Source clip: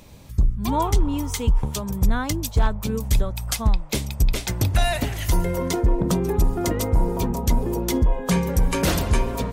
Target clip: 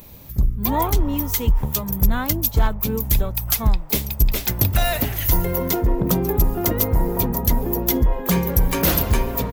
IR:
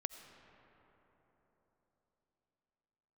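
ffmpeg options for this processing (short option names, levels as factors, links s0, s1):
-filter_complex "[0:a]asplit=3[s0][s1][s2];[s1]asetrate=33038,aresample=44100,atempo=1.33484,volume=0.158[s3];[s2]asetrate=88200,aresample=44100,atempo=0.5,volume=0.141[s4];[s0][s3][s4]amix=inputs=3:normalize=0,aexciter=amount=4.6:drive=8.8:freq=12000,volume=1.12"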